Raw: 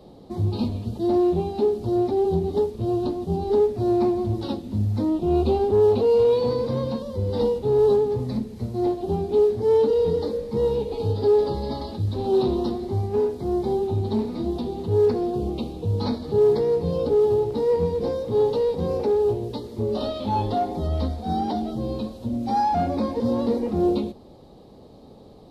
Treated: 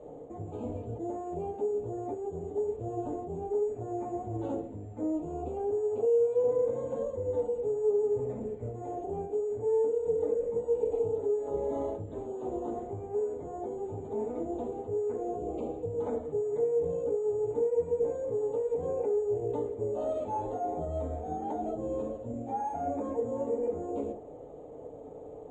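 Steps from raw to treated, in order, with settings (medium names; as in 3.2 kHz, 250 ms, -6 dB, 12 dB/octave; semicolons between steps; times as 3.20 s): reverse; compression 6:1, threshold -29 dBFS, peak gain reduction 13.5 dB; reverse; high-order bell 540 Hz +9.5 dB 1.1 oct; careless resampling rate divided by 6×, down filtered, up zero stuff; peak limiter -5 dBFS, peak gain reduction 6 dB; low-pass 2.6 kHz 24 dB/octave; FDN reverb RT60 0.31 s, low-frequency decay 0.7×, high-frequency decay 0.4×, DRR -1.5 dB; trim -8 dB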